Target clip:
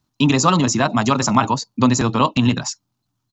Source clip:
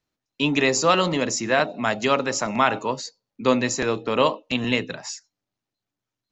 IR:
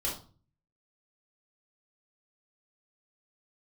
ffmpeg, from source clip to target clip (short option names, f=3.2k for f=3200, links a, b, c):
-filter_complex "[0:a]equalizer=f=125:t=o:w=1:g=8,equalizer=f=250:t=o:w=1:g=4,equalizer=f=500:t=o:w=1:g=-11,equalizer=f=1k:t=o:w=1:g=6,equalizer=f=2k:t=o:w=1:g=-9,asplit=2[a][b];[b]acompressor=threshold=-28dB:ratio=6,volume=2dB[c];[a][c]amix=inputs=2:normalize=0,atempo=1.9,volume=3dB"